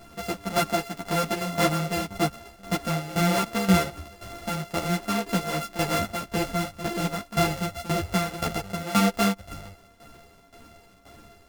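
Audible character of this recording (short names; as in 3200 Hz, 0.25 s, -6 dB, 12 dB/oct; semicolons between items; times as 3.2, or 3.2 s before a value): a buzz of ramps at a fixed pitch in blocks of 64 samples; tremolo saw down 1.9 Hz, depth 80%; a shimmering, thickened sound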